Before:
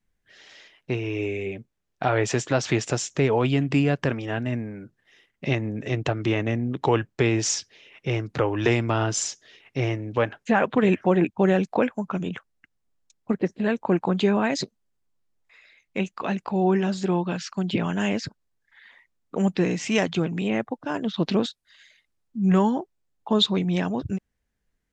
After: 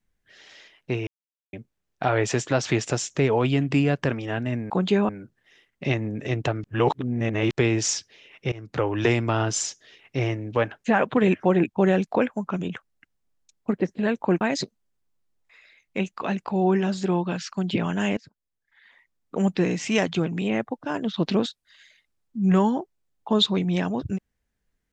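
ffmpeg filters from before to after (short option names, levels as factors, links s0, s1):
-filter_complex "[0:a]asplit=10[s0][s1][s2][s3][s4][s5][s6][s7][s8][s9];[s0]atrim=end=1.07,asetpts=PTS-STARTPTS,afade=t=out:st=1.066:d=0.004:c=hsin[s10];[s1]atrim=start=1.07:end=1.53,asetpts=PTS-STARTPTS,volume=0[s11];[s2]atrim=start=1.53:end=4.702,asetpts=PTS-STARTPTS,afade=t=in:d=0.004:c=hsin[s12];[s3]atrim=start=14.018:end=14.412[s13];[s4]atrim=start=4.698:end=6.252[s14];[s5]atrim=start=6.248:end=7.122,asetpts=PTS-STARTPTS,areverse[s15];[s6]atrim=start=7.118:end=8.13,asetpts=PTS-STARTPTS,afade=t=out:st=1.008:d=0.004:c=hsin:silence=0.0749894[s16];[s7]atrim=start=8.13:end=14.022,asetpts=PTS-STARTPTS,afade=t=in:d=0.45:c=qsin:silence=0.0749894[s17];[s8]atrim=start=14.408:end=18.17,asetpts=PTS-STARTPTS,afade=t=out:st=3.758:d=0.004:c=hsin:silence=0.0630957[s18];[s9]atrim=start=18.17,asetpts=PTS-STARTPTS,afade=t=in:d=1.2:silence=0.0630957[s19];[s10][s11][s12]concat=n=3:v=0:a=1[s20];[s20][s13]acrossfade=d=0.004:c1=hsin:c2=hsin[s21];[s21][s14]acrossfade=d=0.004:c1=hsin:c2=hsin[s22];[s22][s15]acrossfade=d=0.004:c1=hsin:c2=hsin[s23];[s16][s17]concat=n=2:v=0:a=1[s24];[s23][s24]acrossfade=d=0.004:c1=hsin:c2=hsin[s25];[s18][s19]concat=n=2:v=0:a=1[s26];[s25][s26]acrossfade=d=0.004:c1=hsin:c2=hsin"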